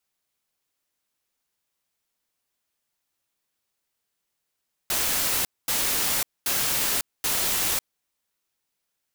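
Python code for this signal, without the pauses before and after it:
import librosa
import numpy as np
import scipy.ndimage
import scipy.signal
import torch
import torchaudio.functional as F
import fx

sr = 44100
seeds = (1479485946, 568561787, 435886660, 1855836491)

y = fx.noise_burst(sr, seeds[0], colour='white', on_s=0.55, off_s=0.23, bursts=4, level_db=-24.5)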